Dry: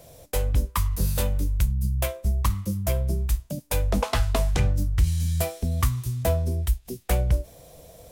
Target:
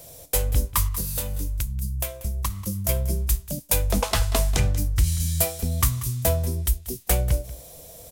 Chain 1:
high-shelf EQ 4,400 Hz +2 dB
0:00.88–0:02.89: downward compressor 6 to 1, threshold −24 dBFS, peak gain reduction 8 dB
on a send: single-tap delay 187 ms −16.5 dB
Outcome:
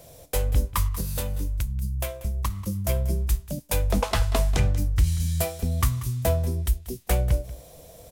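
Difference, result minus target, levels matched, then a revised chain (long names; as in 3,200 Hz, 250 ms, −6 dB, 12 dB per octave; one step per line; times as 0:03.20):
8,000 Hz band −5.5 dB
high-shelf EQ 4,400 Hz +11 dB
0:00.88–0:02.89: downward compressor 6 to 1, threshold −24 dBFS, peak gain reduction 8.5 dB
on a send: single-tap delay 187 ms −16.5 dB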